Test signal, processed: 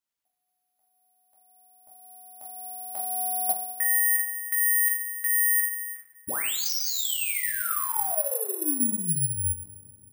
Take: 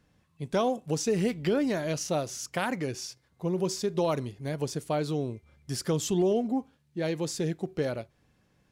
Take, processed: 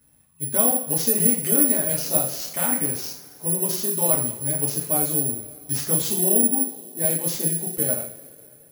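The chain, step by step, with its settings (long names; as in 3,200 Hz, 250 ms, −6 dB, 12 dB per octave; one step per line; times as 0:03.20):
coupled-rooms reverb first 0.48 s, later 3 s, from −20 dB, DRR −2.5 dB
bad sample-rate conversion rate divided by 4×, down none, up zero stuff
level −4 dB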